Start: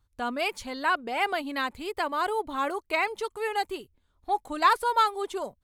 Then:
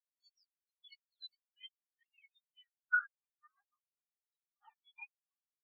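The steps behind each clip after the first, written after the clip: spectrum inverted on a logarithmic axis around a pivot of 1.8 kHz; band-pass sweep 6.2 kHz -> 1.2 kHz, 0.14–3.25 s; spectral contrast expander 4:1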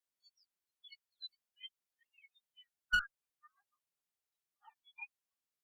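one-sided clip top -34.5 dBFS, bottom -22 dBFS; trim +2.5 dB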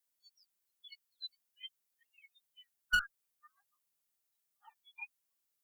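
treble shelf 7.4 kHz +10.5 dB; trim +1 dB

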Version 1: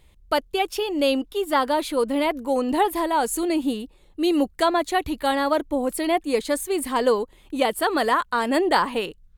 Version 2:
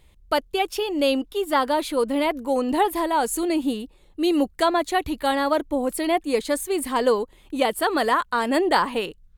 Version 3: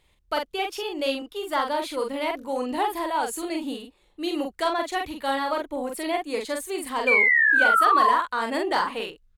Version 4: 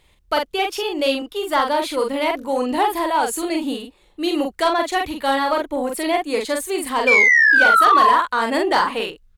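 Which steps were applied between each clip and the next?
no audible change
overdrive pedal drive 6 dB, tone 6.6 kHz, clips at -7 dBFS; painted sound fall, 7.07–8.16 s, 960–2400 Hz -14 dBFS; doubling 44 ms -4 dB; trim -6 dB
saturation -12.5 dBFS, distortion -20 dB; trim +7 dB

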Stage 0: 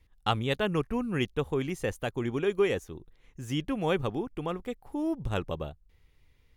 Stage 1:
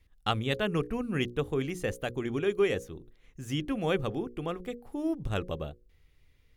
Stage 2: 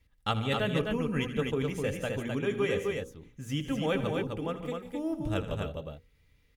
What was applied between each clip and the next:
peaking EQ 920 Hz -6 dB 0.39 oct; hum notches 60/120/180/240/300/360/420/480/540 Hz
comb of notches 360 Hz; multi-tap echo 80/145/173/257 ms -13.5/-14/-17.5/-4 dB

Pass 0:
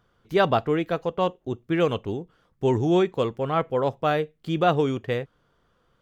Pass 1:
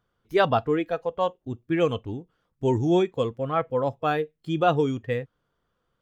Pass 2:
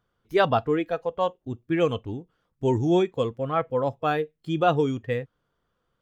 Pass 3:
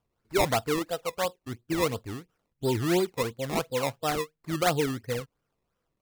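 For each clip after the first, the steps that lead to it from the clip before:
spectral noise reduction 9 dB
no audible change
decimation with a swept rate 20×, swing 100% 2.9 Hz; trim -4 dB

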